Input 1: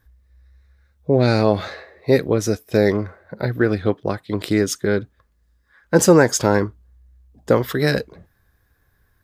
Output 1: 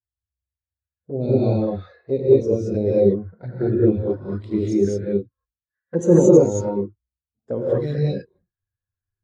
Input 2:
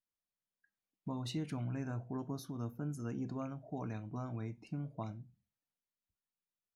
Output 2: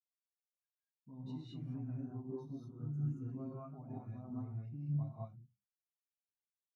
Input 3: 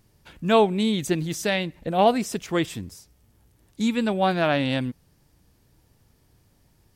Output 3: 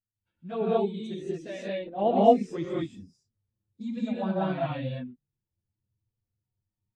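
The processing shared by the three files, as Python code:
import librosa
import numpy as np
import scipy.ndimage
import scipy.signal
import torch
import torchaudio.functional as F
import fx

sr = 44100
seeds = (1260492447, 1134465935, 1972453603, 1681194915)

y = scipy.signal.sosfilt(scipy.signal.butter(2, 8800.0, 'lowpass', fs=sr, output='sos'), x)
y = fx.rider(y, sr, range_db=4, speed_s=2.0)
y = fx.env_flanger(y, sr, rest_ms=9.8, full_db=-13.0)
y = fx.rev_gated(y, sr, seeds[0], gate_ms=250, shape='rising', drr_db=-5.0)
y = fx.spectral_expand(y, sr, expansion=1.5)
y = y * 10.0 ** (-4.5 / 20.0)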